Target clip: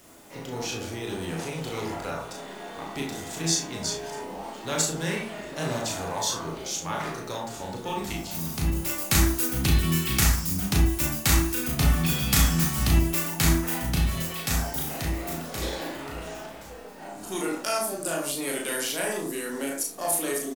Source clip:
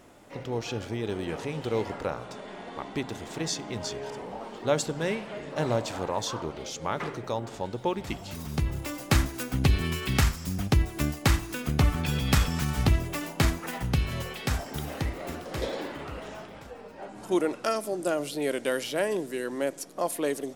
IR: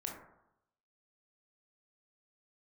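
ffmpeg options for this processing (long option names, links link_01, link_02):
-filter_complex "[0:a]acrossover=split=270|850|4500[link_01][link_02][link_03][link_04];[link_02]asoftclip=type=tanh:threshold=-32.5dB[link_05];[link_01][link_05][link_03][link_04]amix=inputs=4:normalize=0,crystalizer=i=3:c=0,acrusher=bits=8:mix=0:aa=0.000001,asplit=2[link_06][link_07];[link_07]adelay=36,volume=-4.5dB[link_08];[link_06][link_08]amix=inputs=2:normalize=0[link_09];[1:a]atrim=start_sample=2205,afade=type=out:start_time=0.17:duration=0.01,atrim=end_sample=7938[link_10];[link_09][link_10]afir=irnorm=-1:irlink=0"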